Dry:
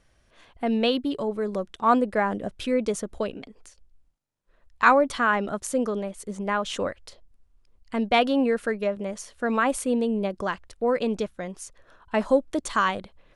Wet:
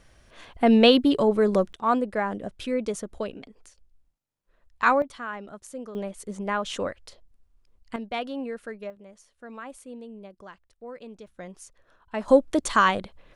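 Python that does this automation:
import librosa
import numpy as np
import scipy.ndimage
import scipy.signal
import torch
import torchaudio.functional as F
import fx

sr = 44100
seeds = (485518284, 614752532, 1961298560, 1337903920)

y = fx.gain(x, sr, db=fx.steps((0.0, 7.0), (1.73, -3.0), (5.02, -12.5), (5.95, -1.5), (7.96, -10.5), (8.9, -17.0), (11.27, -6.5), (12.28, 3.5)))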